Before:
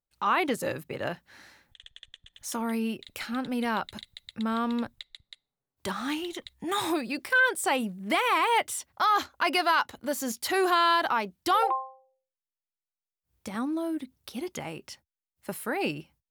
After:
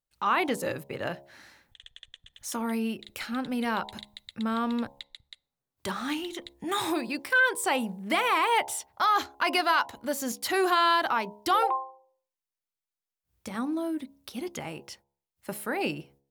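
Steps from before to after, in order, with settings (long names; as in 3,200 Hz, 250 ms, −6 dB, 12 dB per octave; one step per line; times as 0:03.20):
hum removal 69.3 Hz, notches 15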